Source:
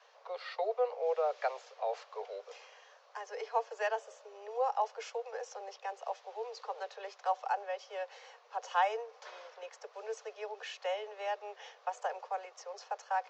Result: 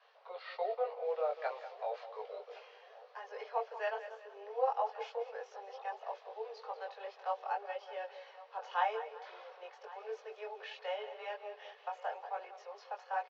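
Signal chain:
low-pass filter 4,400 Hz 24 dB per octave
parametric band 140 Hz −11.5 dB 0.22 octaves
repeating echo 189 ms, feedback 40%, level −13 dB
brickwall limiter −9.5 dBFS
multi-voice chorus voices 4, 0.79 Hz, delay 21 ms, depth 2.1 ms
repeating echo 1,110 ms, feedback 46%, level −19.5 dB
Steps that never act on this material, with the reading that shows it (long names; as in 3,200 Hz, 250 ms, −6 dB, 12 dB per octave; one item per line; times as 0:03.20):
parametric band 140 Hz: nothing at its input below 360 Hz
brickwall limiter −9.5 dBFS: peak of its input −19.0 dBFS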